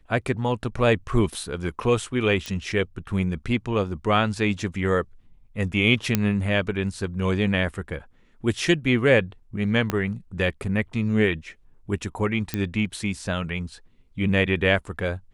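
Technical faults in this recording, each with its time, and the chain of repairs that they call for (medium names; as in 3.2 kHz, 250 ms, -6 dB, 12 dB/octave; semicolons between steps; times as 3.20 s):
2.46 s: pop -16 dBFS
6.15 s: pop -5 dBFS
9.90 s: pop -10 dBFS
12.54 s: pop -10 dBFS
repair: de-click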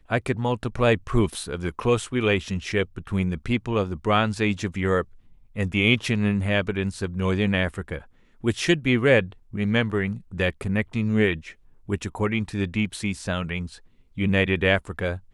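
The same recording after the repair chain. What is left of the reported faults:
9.90 s: pop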